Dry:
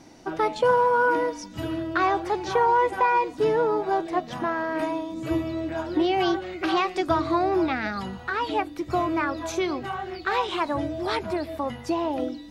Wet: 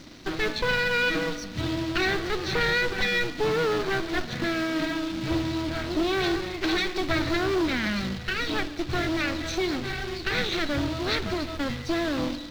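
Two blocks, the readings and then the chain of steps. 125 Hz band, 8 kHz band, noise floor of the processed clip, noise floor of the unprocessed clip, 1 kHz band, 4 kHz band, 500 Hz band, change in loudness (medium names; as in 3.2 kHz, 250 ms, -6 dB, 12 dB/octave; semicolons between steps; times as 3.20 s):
+5.0 dB, +4.5 dB, -37 dBFS, -42 dBFS, -9.5 dB, +7.0 dB, -3.5 dB, -1.5 dB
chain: comb filter that takes the minimum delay 0.49 ms; bass shelf 230 Hz +7.5 dB; spring tank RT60 1.2 s, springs 53 ms, chirp 50 ms, DRR 15.5 dB; companded quantiser 4-bit; saturation -20 dBFS, distortion -13 dB; FFT filter 840 Hz 0 dB, 2.1 kHz +3 dB, 4.2 kHz +8 dB, 9.3 kHz -10 dB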